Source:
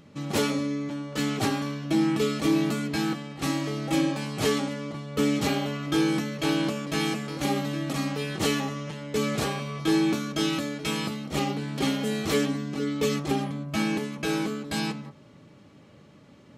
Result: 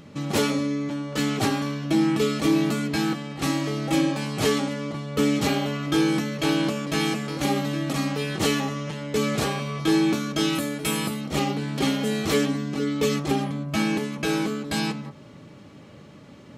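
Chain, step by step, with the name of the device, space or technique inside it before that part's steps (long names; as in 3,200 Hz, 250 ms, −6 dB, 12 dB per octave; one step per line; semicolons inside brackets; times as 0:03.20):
0:10.55–0:11.21: high shelf with overshoot 7,600 Hz +8 dB, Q 1.5
parallel compression (in parallel at −2.5 dB: downward compressor, threshold −39 dBFS, peak gain reduction 18 dB)
on the sum: level +1.5 dB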